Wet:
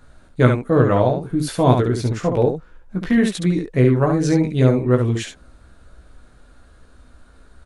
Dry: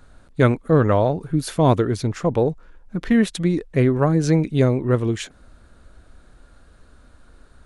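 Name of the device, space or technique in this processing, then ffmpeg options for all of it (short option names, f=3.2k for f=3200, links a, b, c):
slapback doubling: -filter_complex "[0:a]asplit=3[a][b][c];[b]adelay=16,volume=-4dB[d];[c]adelay=69,volume=-4.5dB[e];[a][d][e]amix=inputs=3:normalize=0,volume=-1dB"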